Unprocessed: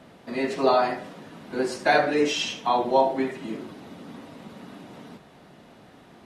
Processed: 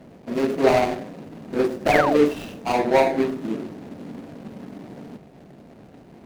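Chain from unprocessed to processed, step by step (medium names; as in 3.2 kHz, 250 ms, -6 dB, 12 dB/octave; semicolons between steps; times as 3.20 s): median filter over 41 samples; de-hum 87.85 Hz, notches 4; painted sound fall, 1.91–2.18 s, 460–2700 Hz -30 dBFS; trim +6.5 dB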